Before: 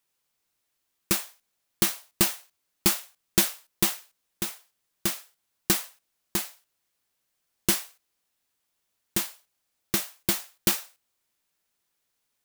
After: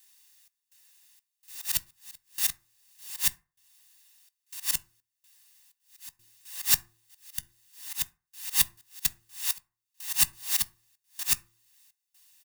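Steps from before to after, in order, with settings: whole clip reversed; auto swell 0.16 s; passive tone stack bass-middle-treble 10-0-10; comb 1.1 ms, depth 52%; de-hum 114 Hz, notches 3; in parallel at -2.5 dB: limiter -20 dBFS, peak gain reduction 9.5 dB; on the sum: step gate "xx.xx.xx..xxxx.x" 63 bpm -24 dB; on a send at -11.5 dB: reverb RT60 0.35 s, pre-delay 3 ms; on the sum: mismatched tape noise reduction encoder only; gain +2.5 dB

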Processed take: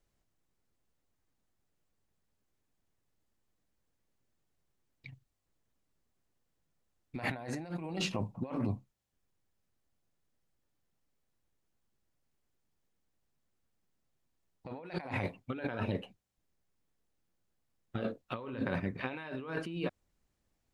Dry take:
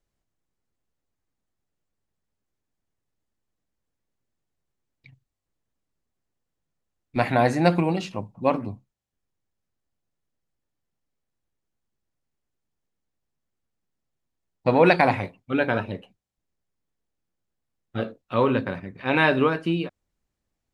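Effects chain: negative-ratio compressor -32 dBFS, ratio -1; gain -6.5 dB

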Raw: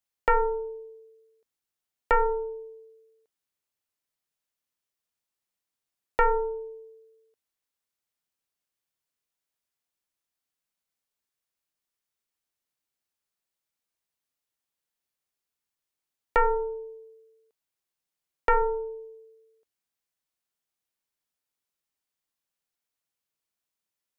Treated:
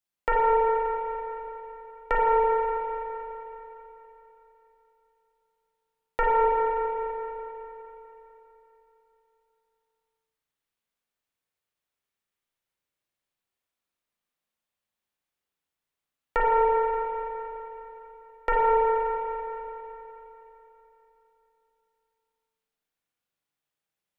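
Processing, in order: 6.45–6.9 inverse Chebyshev low-pass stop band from 1200 Hz, stop band 60 dB; spring tank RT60 3.5 s, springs 36/41 ms, chirp 25 ms, DRR -5 dB; gain -3.5 dB

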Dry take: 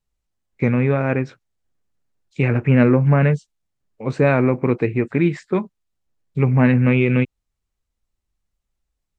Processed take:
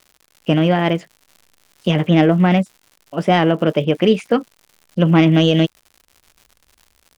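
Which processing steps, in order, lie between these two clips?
tracing distortion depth 0.023 ms; AGC gain up to 12 dB; crackle 120/s -33 dBFS; varispeed +28%; gain -1 dB

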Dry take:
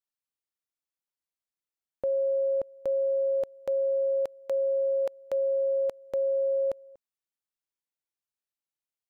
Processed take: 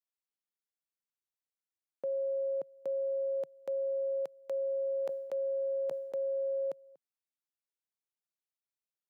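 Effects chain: Chebyshev high-pass 150 Hz, order 4; 4.99–6.67 sustainer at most 52 dB/s; gain -6.5 dB

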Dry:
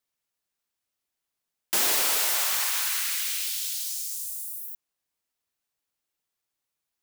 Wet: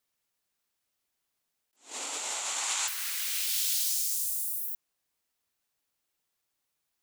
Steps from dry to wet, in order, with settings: 1.76–2.88 speaker cabinet 190–8000 Hz, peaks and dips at 270 Hz +9 dB, 840 Hz +4 dB, 1700 Hz -6 dB, 5100 Hz -5 dB, 7300 Hz +9 dB; negative-ratio compressor -31 dBFS, ratio -0.5; attack slew limiter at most 190 dB/s

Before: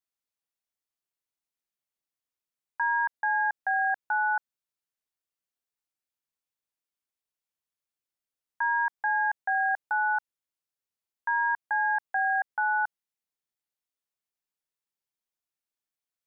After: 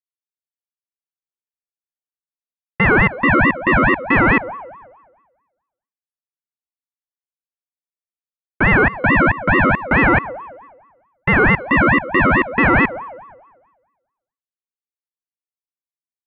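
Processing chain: one-sided fold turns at -27.5 dBFS; dynamic EQ 1000 Hz, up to +5 dB, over -41 dBFS, Q 1.1; sample leveller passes 2; LPF 1300 Hz 24 dB/oct; gate with hold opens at -27 dBFS; on a send at -19.5 dB: reverb RT60 1.3 s, pre-delay 35 ms; on the sum: AGC gain up to 15 dB; ring modulator with a swept carrier 820 Hz, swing 40%, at 4.6 Hz

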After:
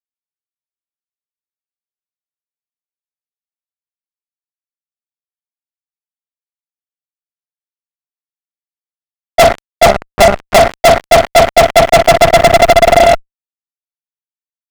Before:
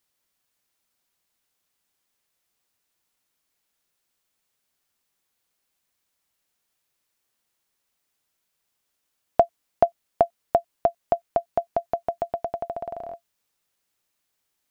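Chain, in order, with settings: per-bin expansion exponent 1.5; on a send at -9 dB: reverb RT60 0.40 s, pre-delay 3 ms; on the sum: reverb removal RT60 0.65 s; tilt -2.5 dB/oct; thin delay 63 ms, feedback 64%, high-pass 2500 Hz, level -19 dB; 9.86–10.58 monotone LPC vocoder at 8 kHz 200 Hz; AGC gain up to 11 dB; fuzz box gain 45 dB, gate -49 dBFS; maximiser +19.5 dB; gain -1 dB

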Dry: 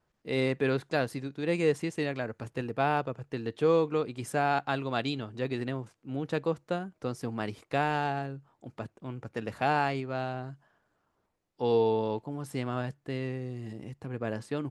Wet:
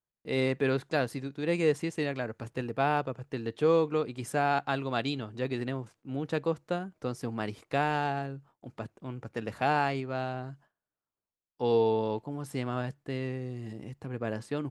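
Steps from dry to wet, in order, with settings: gate with hold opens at -51 dBFS

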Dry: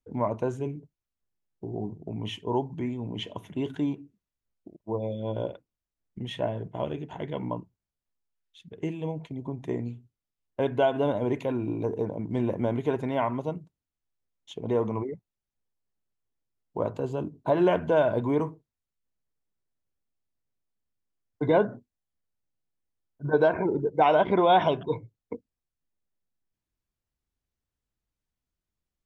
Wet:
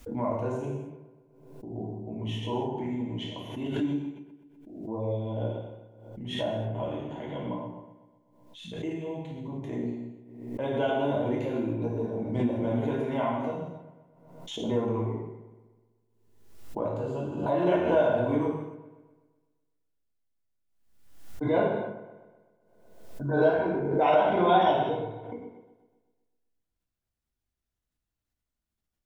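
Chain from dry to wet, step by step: on a send: dark delay 0.126 s, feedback 53%, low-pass 2100 Hz, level -13 dB; on the sum: non-linear reverb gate 0.34 s falling, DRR -5 dB; backwards sustainer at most 59 dB/s; gain -8 dB

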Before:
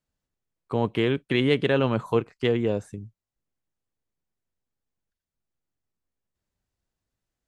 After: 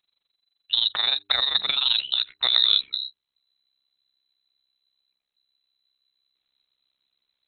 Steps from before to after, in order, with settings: AM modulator 23 Hz, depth 80%, from 1.97 s modulator 66 Hz; inverted band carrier 4000 Hz; de-hum 100.1 Hz, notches 4; negative-ratio compressor -29 dBFS, ratio -1; gain +7.5 dB

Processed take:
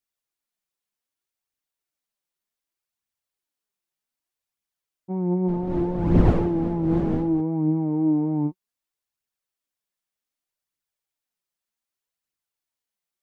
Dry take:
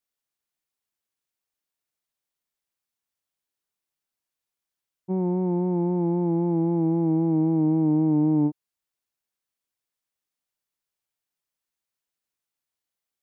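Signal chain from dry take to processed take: 5.47–7.4 wind noise 290 Hz -19 dBFS; flange 0.65 Hz, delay 0.3 ms, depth 5.7 ms, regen +47%; gain +3 dB

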